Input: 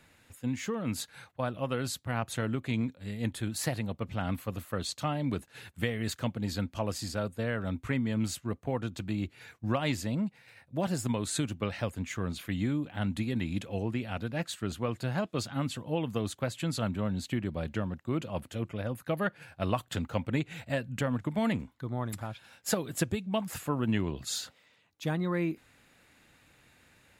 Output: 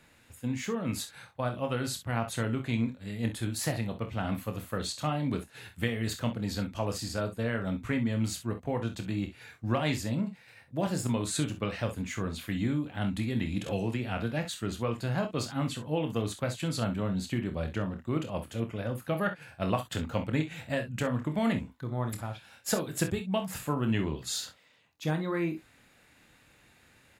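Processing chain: on a send: early reflections 26 ms -8 dB, 48 ms -13 dB, 64 ms -13 dB; 13.66–14.45 s: on the sum: three bands compressed up and down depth 100%

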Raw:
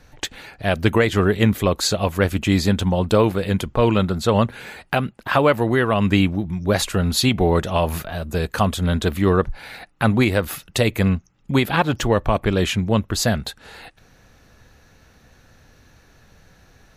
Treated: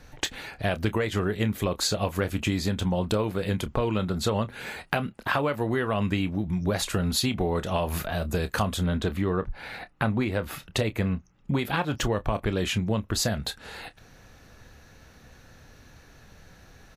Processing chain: 8.85–11.59 s: treble shelf 4.6 kHz -10 dB; compression, threshold -23 dBFS, peak gain reduction 11.5 dB; doubling 28 ms -13 dB

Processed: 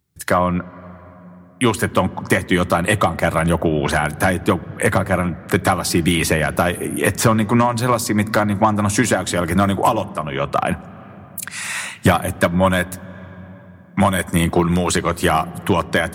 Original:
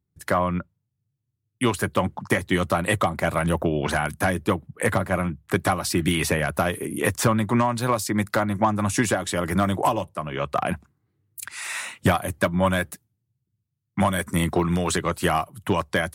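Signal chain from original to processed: on a send at -20 dB: reverberation RT60 3.5 s, pre-delay 7 ms; on the sum: tape noise reduction on one side only encoder only; trim +5.5 dB

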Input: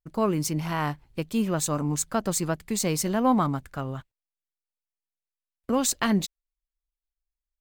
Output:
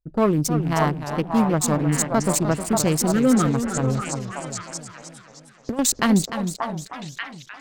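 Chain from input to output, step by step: local Wiener filter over 41 samples; 3.12–3.48 s: time-frequency box 550–1200 Hz -25 dB; 3.83–5.79 s: compressor with a negative ratio -29 dBFS, ratio -0.5; saturation -14.5 dBFS, distortion -23 dB; repeats whose band climbs or falls 585 ms, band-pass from 830 Hz, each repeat 1.4 oct, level -0.5 dB; modulated delay 306 ms, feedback 55%, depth 176 cents, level -9.5 dB; trim +7 dB

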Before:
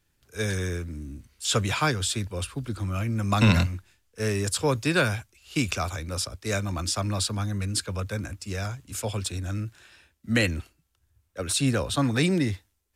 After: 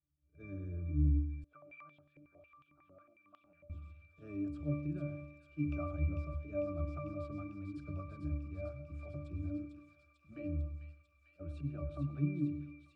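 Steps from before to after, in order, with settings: gate -47 dBFS, range -10 dB; treble shelf 2.4 kHz -10.5 dB; slow attack 111 ms; compression, threshold -31 dBFS, peak gain reduction 12.5 dB; pitch-class resonator D, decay 0.52 s; rotary cabinet horn 0.65 Hz, later 5.5 Hz, at 6.32 s; feedback echo behind a high-pass 447 ms, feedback 78%, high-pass 2.5 kHz, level -4.5 dB; reverberation RT60 0.55 s, pre-delay 96 ms, DRR 13 dB; 1.44–3.70 s: step-sequenced band-pass 11 Hz 530–3200 Hz; trim +13.5 dB

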